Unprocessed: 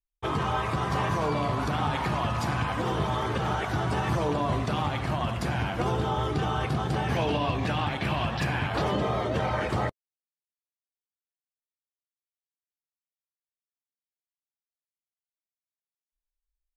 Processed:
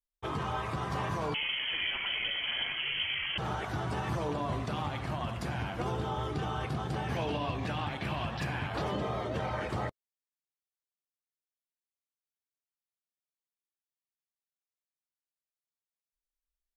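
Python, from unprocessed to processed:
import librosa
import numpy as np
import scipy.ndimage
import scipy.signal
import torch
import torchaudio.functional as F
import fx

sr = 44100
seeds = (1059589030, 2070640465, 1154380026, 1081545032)

y = fx.freq_invert(x, sr, carrier_hz=3200, at=(1.34, 3.38))
y = F.gain(torch.from_numpy(y), -6.5).numpy()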